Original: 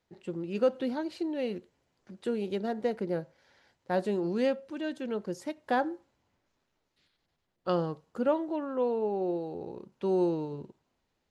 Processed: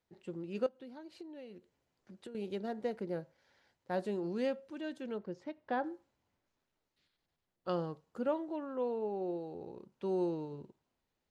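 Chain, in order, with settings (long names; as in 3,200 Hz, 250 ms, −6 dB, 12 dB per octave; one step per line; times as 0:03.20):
0:00.66–0:02.35: downward compressor 16 to 1, threshold −39 dBFS, peak gain reduction 18 dB
0:05.18–0:05.84: high-frequency loss of the air 200 metres
level −6.5 dB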